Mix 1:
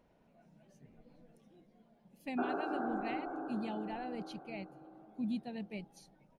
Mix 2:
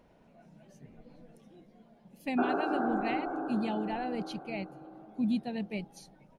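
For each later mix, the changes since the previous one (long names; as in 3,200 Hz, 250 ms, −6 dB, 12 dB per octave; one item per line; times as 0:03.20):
speech +7.0 dB
background +6.0 dB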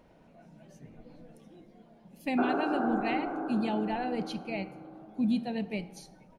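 reverb: on, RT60 1.0 s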